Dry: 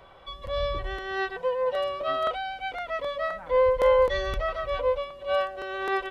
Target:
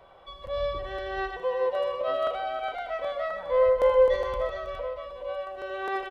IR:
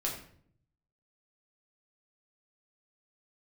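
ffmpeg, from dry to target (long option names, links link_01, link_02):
-filter_complex "[0:a]equalizer=frequency=650:width_type=o:width=1.3:gain=6,asettb=1/sr,asplit=3[link_01][link_02][link_03];[link_01]atrim=end=4.154[link_04];[link_02]atrim=start=4.15:end=5.47,asetpts=PTS-STARTPTS,afade=type=in:duration=0.004:curve=qsin,afade=type=out:start_time=1.316:duration=0.004:curve=qsin,acompressor=threshold=-26dB:ratio=6[link_05];[link_03]atrim=start=5.466[link_06];[link_04][link_05]acrossfade=duration=0.004:curve1=hsin:curve2=qsin[link_07];[link_07][link_06]acrossfade=duration=0.004:curve1=qsin:curve2=hsin,aecho=1:1:78|124|321|413:0.316|0.211|0.237|0.398,volume=-6dB"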